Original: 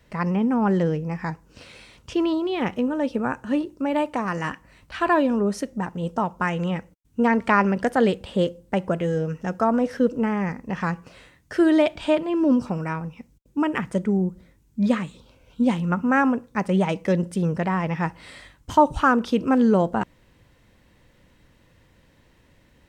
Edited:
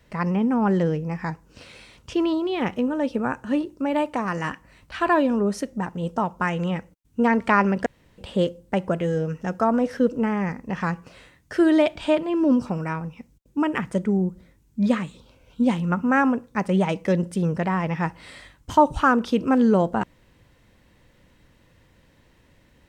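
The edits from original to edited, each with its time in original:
7.86–8.18 s: room tone

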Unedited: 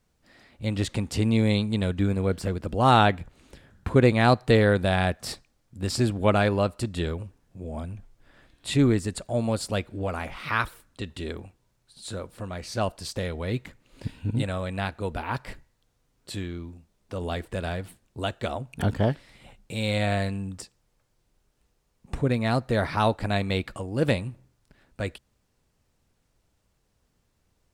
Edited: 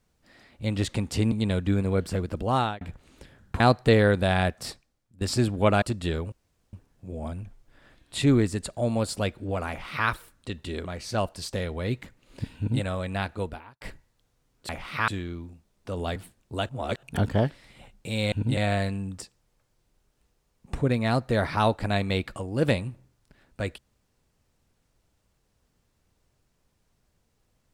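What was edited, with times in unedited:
1.32–1.64 s: delete
2.67–3.13 s: fade out
3.92–4.22 s: delete
5.11–5.83 s: fade out, to -17 dB
6.44–6.75 s: delete
7.25 s: insert room tone 0.41 s
10.21–10.60 s: copy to 16.32 s
11.37–12.48 s: delete
14.20–14.45 s: copy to 19.97 s
15.05–15.44 s: fade out quadratic
17.40–17.81 s: delete
18.34–18.68 s: reverse

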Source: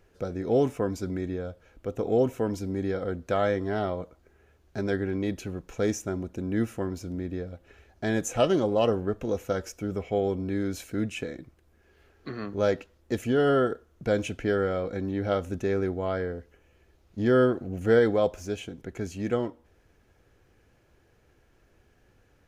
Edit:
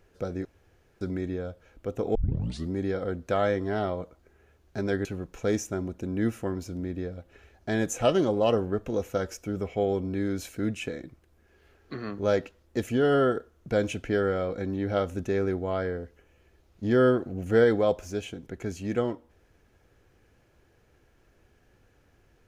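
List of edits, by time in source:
0.45–1.01 s: room tone
2.15 s: tape start 0.57 s
5.05–5.40 s: delete

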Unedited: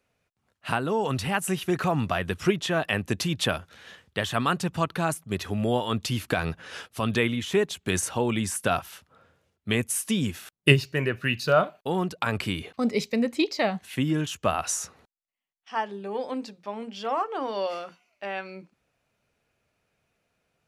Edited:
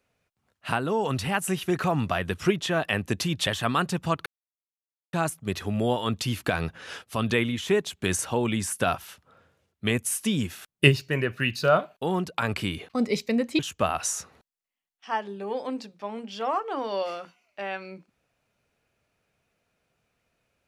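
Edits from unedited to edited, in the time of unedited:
3.47–4.18 s: delete
4.97 s: insert silence 0.87 s
13.43–14.23 s: delete

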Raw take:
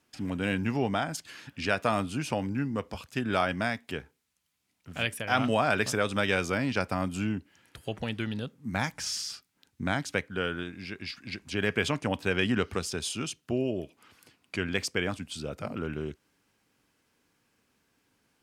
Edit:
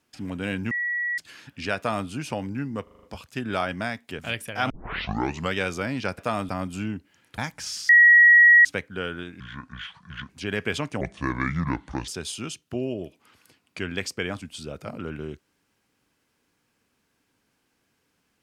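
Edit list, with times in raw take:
0.71–1.18 s: bleep 1.93 kHz -24 dBFS
1.77–2.08 s: copy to 6.90 s
2.83 s: stutter 0.04 s, 6 plays
3.99–4.91 s: delete
5.42 s: tape start 0.86 s
7.79–8.78 s: delete
9.29–10.05 s: bleep 1.91 kHz -10 dBFS
10.80–11.40 s: speed 67%
12.11–12.85 s: speed 69%

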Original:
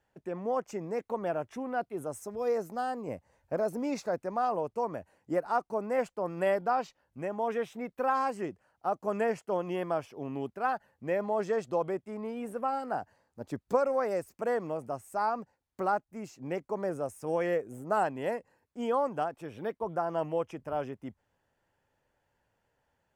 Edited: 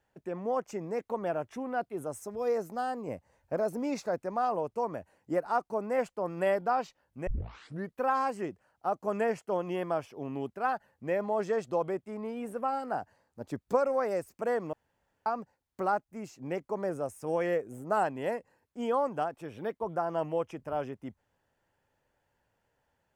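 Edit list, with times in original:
7.27 s: tape start 0.69 s
14.73–15.26 s: room tone

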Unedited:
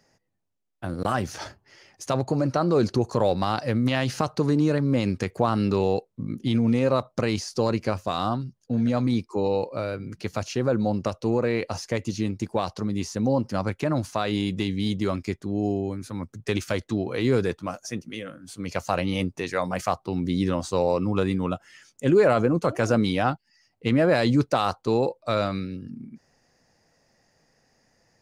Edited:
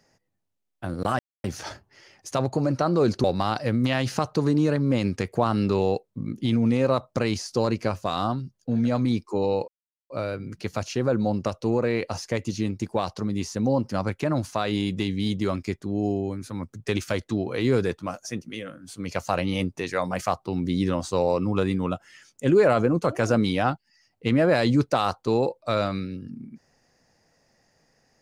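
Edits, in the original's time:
1.19 s: insert silence 0.25 s
2.99–3.26 s: delete
9.70 s: insert silence 0.42 s

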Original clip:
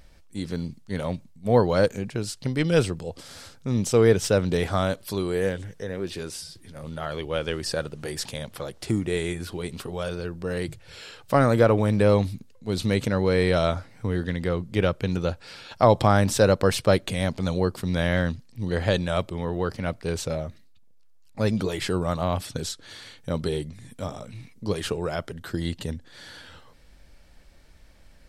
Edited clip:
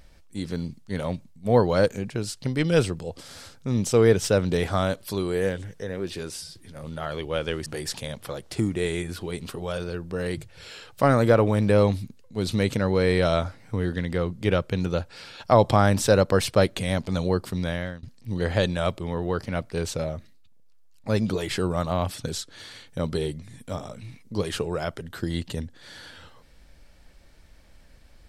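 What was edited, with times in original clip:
7.66–7.97 s: delete
17.80–18.34 s: fade out, to -24 dB

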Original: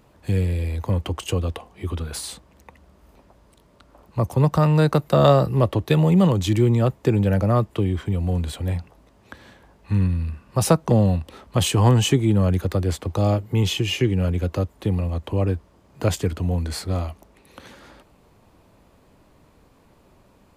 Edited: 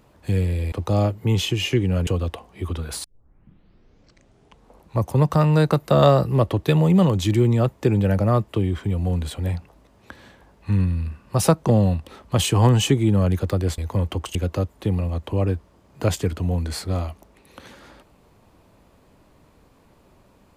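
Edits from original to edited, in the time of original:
0.72–1.29 s: swap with 13.00–14.35 s
2.26 s: tape start 1.99 s

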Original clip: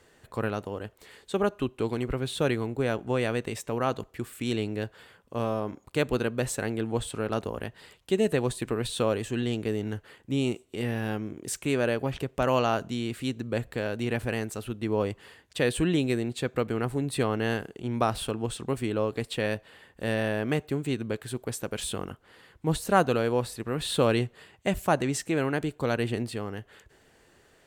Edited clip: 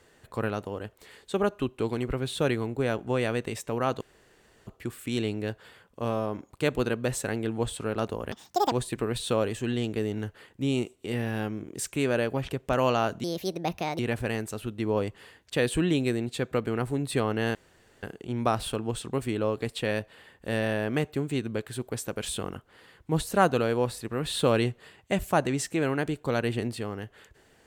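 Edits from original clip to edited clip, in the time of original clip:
4.01 s: insert room tone 0.66 s
7.66–8.41 s: speed 189%
12.93–14.02 s: speed 145%
17.58 s: insert room tone 0.48 s

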